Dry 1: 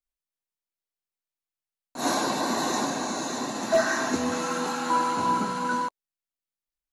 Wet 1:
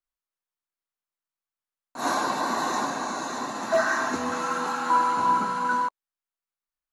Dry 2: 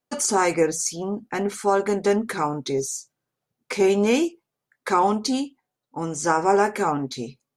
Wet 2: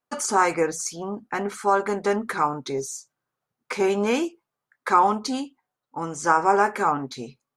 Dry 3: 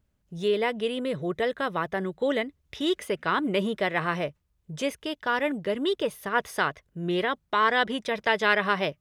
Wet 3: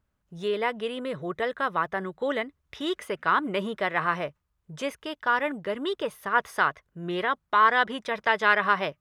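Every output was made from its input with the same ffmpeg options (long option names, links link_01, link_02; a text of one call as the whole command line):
ffmpeg -i in.wav -af "equalizer=frequency=1200:width=1:gain=9,volume=-4.5dB" out.wav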